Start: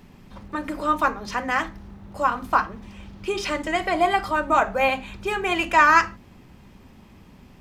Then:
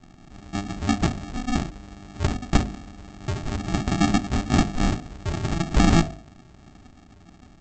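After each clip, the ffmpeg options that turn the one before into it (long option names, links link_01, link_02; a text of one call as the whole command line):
ffmpeg -i in.wav -af "aresample=16000,acrusher=samples=32:mix=1:aa=0.000001,aresample=44100,bandreject=frequency=51.09:width_type=h:width=4,bandreject=frequency=102.18:width_type=h:width=4,bandreject=frequency=153.27:width_type=h:width=4,bandreject=frequency=204.36:width_type=h:width=4,bandreject=frequency=255.45:width_type=h:width=4,bandreject=frequency=306.54:width_type=h:width=4,bandreject=frequency=357.63:width_type=h:width=4,bandreject=frequency=408.72:width_type=h:width=4,bandreject=frequency=459.81:width_type=h:width=4,bandreject=frequency=510.9:width_type=h:width=4,bandreject=frequency=561.99:width_type=h:width=4,bandreject=frequency=613.08:width_type=h:width=4,bandreject=frequency=664.17:width_type=h:width=4,bandreject=frequency=715.26:width_type=h:width=4" out.wav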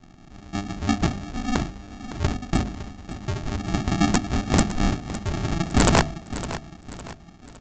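ffmpeg -i in.wav -af "aresample=16000,aeval=exprs='(mod(3.35*val(0)+1,2)-1)/3.35':channel_layout=same,aresample=44100,aecho=1:1:559|1118|1677|2236:0.224|0.094|0.0395|0.0166" out.wav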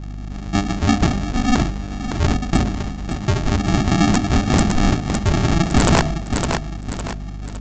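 ffmpeg -i in.wav -af "aeval=exprs='val(0)+0.0126*(sin(2*PI*50*n/s)+sin(2*PI*2*50*n/s)/2+sin(2*PI*3*50*n/s)/3+sin(2*PI*4*50*n/s)/4+sin(2*PI*5*50*n/s)/5)':channel_layout=same,alimiter=level_in=15dB:limit=-1dB:release=50:level=0:latency=1,volume=-5.5dB" out.wav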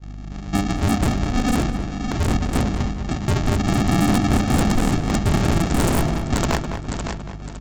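ffmpeg -i in.wav -filter_complex "[0:a]aeval=exprs='0.224*(abs(mod(val(0)/0.224+3,4)-2)-1)':channel_layout=same,agate=range=-33dB:threshold=-25dB:ratio=3:detection=peak,asplit=2[link_01][link_02];[link_02]adelay=206,lowpass=frequency=2700:poles=1,volume=-8dB,asplit=2[link_03][link_04];[link_04]adelay=206,lowpass=frequency=2700:poles=1,volume=0.4,asplit=2[link_05][link_06];[link_06]adelay=206,lowpass=frequency=2700:poles=1,volume=0.4,asplit=2[link_07][link_08];[link_08]adelay=206,lowpass=frequency=2700:poles=1,volume=0.4,asplit=2[link_09][link_10];[link_10]adelay=206,lowpass=frequency=2700:poles=1,volume=0.4[link_11];[link_01][link_03][link_05][link_07][link_09][link_11]amix=inputs=6:normalize=0" out.wav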